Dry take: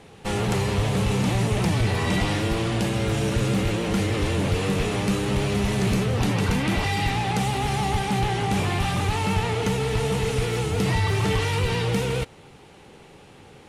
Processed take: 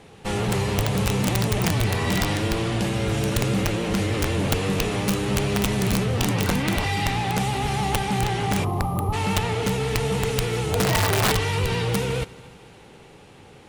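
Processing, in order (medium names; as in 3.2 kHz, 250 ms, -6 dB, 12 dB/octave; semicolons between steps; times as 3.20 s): 8.64–9.13 s: time-frequency box 1.3–10 kHz -29 dB; 10.67–11.31 s: peaking EQ 610 Hz +6.5 dB -> +14.5 dB 0.87 oct; multi-head delay 74 ms, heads first and third, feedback 71%, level -24 dB; integer overflow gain 14 dB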